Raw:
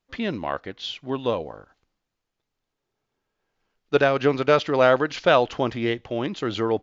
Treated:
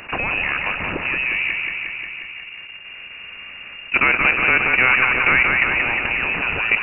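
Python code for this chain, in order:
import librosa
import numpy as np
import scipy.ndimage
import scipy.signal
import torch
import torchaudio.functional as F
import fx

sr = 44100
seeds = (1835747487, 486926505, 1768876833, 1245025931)

y = fx.spec_flatten(x, sr, power=0.58)
y = fx.peak_eq(y, sr, hz=2100.0, db=-13.0, octaves=2.0, at=(1.18, 3.96))
y = fx.level_steps(y, sr, step_db=21)
y = fx.power_curve(y, sr, exponent=0.7)
y = fx.echo_feedback(y, sr, ms=179, feedback_pct=56, wet_db=-6.0)
y = fx.freq_invert(y, sr, carrier_hz=2800)
y = fx.env_flatten(y, sr, amount_pct=50)
y = F.gain(torch.from_numpy(y), 2.0).numpy()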